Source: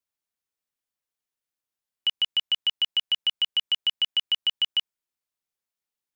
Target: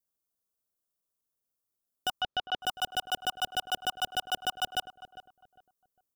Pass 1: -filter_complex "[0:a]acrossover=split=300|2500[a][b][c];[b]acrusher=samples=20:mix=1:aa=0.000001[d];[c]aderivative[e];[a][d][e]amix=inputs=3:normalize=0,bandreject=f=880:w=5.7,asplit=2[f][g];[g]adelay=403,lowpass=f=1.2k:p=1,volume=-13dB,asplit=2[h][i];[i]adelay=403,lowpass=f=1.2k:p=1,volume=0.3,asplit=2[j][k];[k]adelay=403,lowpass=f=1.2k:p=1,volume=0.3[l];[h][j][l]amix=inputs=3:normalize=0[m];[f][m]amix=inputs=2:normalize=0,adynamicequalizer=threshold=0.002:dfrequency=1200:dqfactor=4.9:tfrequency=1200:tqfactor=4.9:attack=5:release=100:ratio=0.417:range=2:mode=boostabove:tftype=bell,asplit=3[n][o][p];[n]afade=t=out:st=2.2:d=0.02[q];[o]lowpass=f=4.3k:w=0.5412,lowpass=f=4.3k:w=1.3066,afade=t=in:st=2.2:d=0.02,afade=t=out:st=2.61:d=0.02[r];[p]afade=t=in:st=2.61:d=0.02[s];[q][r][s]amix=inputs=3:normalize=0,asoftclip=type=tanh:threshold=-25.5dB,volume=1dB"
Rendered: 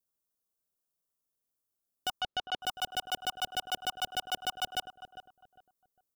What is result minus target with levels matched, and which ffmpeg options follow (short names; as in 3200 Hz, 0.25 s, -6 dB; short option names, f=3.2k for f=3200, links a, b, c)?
soft clip: distortion +19 dB
-filter_complex "[0:a]acrossover=split=300|2500[a][b][c];[b]acrusher=samples=20:mix=1:aa=0.000001[d];[c]aderivative[e];[a][d][e]amix=inputs=3:normalize=0,bandreject=f=880:w=5.7,asplit=2[f][g];[g]adelay=403,lowpass=f=1.2k:p=1,volume=-13dB,asplit=2[h][i];[i]adelay=403,lowpass=f=1.2k:p=1,volume=0.3,asplit=2[j][k];[k]adelay=403,lowpass=f=1.2k:p=1,volume=0.3[l];[h][j][l]amix=inputs=3:normalize=0[m];[f][m]amix=inputs=2:normalize=0,adynamicequalizer=threshold=0.002:dfrequency=1200:dqfactor=4.9:tfrequency=1200:tqfactor=4.9:attack=5:release=100:ratio=0.417:range=2:mode=boostabove:tftype=bell,asplit=3[n][o][p];[n]afade=t=out:st=2.2:d=0.02[q];[o]lowpass=f=4.3k:w=0.5412,lowpass=f=4.3k:w=1.3066,afade=t=in:st=2.2:d=0.02,afade=t=out:st=2.61:d=0.02[r];[p]afade=t=in:st=2.61:d=0.02[s];[q][r][s]amix=inputs=3:normalize=0,asoftclip=type=tanh:threshold=-14dB,volume=1dB"